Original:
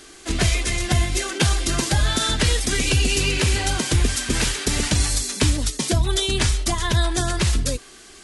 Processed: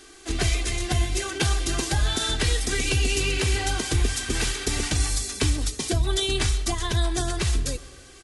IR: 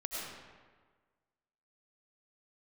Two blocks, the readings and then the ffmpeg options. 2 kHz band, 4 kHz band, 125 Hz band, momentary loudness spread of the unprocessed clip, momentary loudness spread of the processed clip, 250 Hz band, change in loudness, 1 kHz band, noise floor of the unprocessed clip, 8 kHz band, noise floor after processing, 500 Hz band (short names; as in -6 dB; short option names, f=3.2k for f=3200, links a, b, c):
-4.0 dB, -4.0 dB, -4.0 dB, 3 LU, 3 LU, -5.0 dB, -4.0 dB, -4.0 dB, -45 dBFS, -4.5 dB, -47 dBFS, -3.0 dB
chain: -filter_complex "[0:a]aecho=1:1:2.6:0.37,asplit=2[a][b];[1:a]atrim=start_sample=2205,adelay=18[c];[b][c]afir=irnorm=-1:irlink=0,volume=-18dB[d];[a][d]amix=inputs=2:normalize=0,volume=-5dB"